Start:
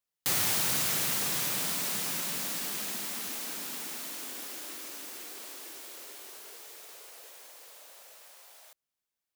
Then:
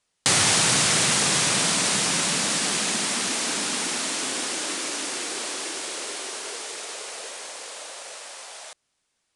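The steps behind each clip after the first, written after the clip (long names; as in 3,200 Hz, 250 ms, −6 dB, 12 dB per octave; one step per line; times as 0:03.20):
Butterworth low-pass 10,000 Hz 72 dB per octave
in parallel at +2.5 dB: downward compressor, threshold −41 dBFS, peak gain reduction 12.5 dB
on the sum: level +9 dB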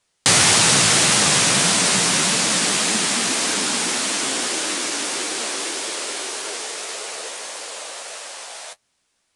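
flanger 1.7 Hz, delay 8.5 ms, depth 9.9 ms, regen +39%
level +9 dB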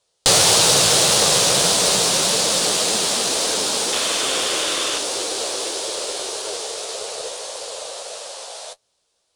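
sound drawn into the spectrogram noise, 0:03.92–0:04.99, 1,000–3,700 Hz −25 dBFS
octave-band graphic EQ 250/500/2,000/4,000 Hz −8/+10/−8/+5 dB
harmonic generator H 2 −14 dB, 4 −15 dB, 8 −38 dB, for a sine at 0 dBFS
level −1 dB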